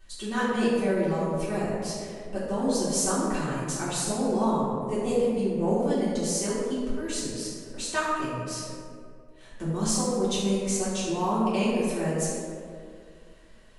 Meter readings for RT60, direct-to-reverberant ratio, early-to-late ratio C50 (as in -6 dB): 2.3 s, -11.5 dB, -2.0 dB